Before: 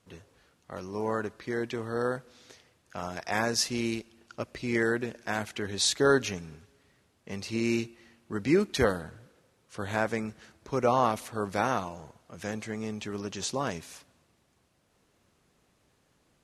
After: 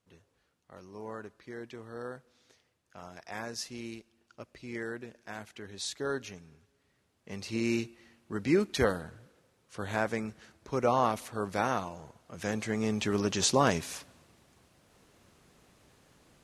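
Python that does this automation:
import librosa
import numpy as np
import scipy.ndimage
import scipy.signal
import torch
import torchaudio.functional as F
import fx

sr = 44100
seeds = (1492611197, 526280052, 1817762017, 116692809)

y = fx.gain(x, sr, db=fx.line((6.51, -11.0), (7.52, -2.0), (12.01, -2.0), (13.08, 6.5)))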